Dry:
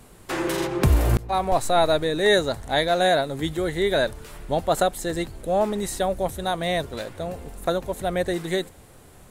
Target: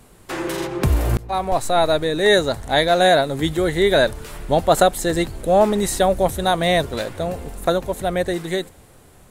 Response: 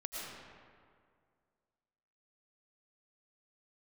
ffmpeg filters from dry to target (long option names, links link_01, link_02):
-af "dynaudnorm=framelen=500:gausssize=9:maxgain=11.5dB"